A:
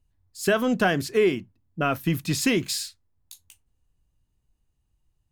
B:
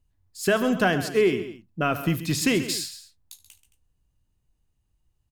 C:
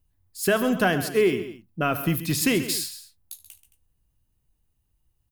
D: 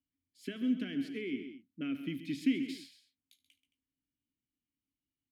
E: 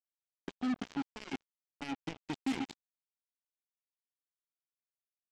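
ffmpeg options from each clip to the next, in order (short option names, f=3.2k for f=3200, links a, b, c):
-af "aecho=1:1:74|132|220:0.126|0.224|0.126"
-af "aexciter=amount=3.2:drive=2.8:freq=9.7k"
-filter_complex "[0:a]acrossover=split=150[a][b];[b]acompressor=threshold=-21dB:ratio=6[c];[a][c]amix=inputs=2:normalize=0,asplit=3[d][e][f];[d]bandpass=f=270:t=q:w=8,volume=0dB[g];[e]bandpass=f=2.29k:t=q:w=8,volume=-6dB[h];[f]bandpass=f=3.01k:t=q:w=8,volume=-9dB[i];[g][h][i]amix=inputs=3:normalize=0"
-af "aresample=16000,acrusher=bits=4:mix=0:aa=0.5,aresample=44100,asoftclip=type=tanh:threshold=-33dB,volume=4.5dB"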